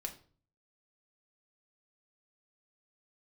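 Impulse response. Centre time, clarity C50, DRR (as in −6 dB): 10 ms, 12.5 dB, 2.0 dB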